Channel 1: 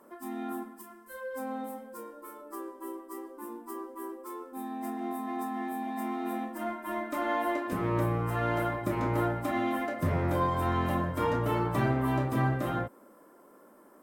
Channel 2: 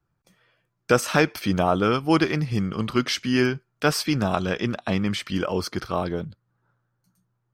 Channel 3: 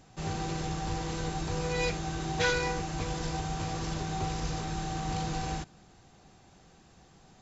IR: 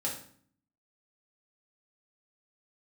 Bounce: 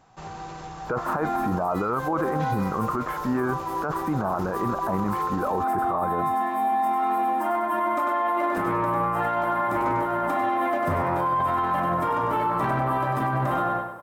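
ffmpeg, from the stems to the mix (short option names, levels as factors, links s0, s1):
-filter_complex "[0:a]asoftclip=type=tanh:threshold=0.1,adelay=850,volume=1.26,asplit=2[s0][s1];[s1]volume=0.631[s2];[1:a]lowpass=f=1400:w=0.5412,lowpass=f=1400:w=1.3066,volume=0.891[s3];[2:a]acompressor=threshold=0.0224:ratio=6,volume=0.501[s4];[s2]aecho=0:1:98|196|294|392|490|588:1|0.41|0.168|0.0689|0.0283|0.0116[s5];[s0][s3][s4][s5]amix=inputs=4:normalize=0,equalizer=f=1000:t=o:w=1.6:g=13,alimiter=limit=0.141:level=0:latency=1:release=17"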